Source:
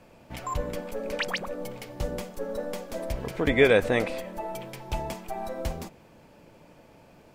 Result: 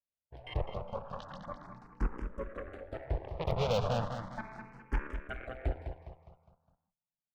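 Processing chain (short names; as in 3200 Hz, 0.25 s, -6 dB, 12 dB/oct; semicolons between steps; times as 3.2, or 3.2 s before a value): gate -40 dBFS, range -44 dB; LPF 2000 Hz 12 dB/oct; low shelf 420 Hz +7 dB; fixed phaser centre 840 Hz, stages 4; added harmonics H 3 -27 dB, 6 -26 dB, 7 -15 dB, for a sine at -14 dBFS; in parallel at -7 dB: sine folder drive 8 dB, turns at -14.5 dBFS; on the sum: feedback echo 0.205 s, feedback 44%, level -8 dB; endless phaser +0.36 Hz; gain -7.5 dB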